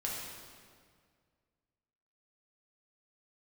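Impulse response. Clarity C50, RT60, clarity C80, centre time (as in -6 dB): 0.0 dB, 2.0 s, 1.5 dB, 96 ms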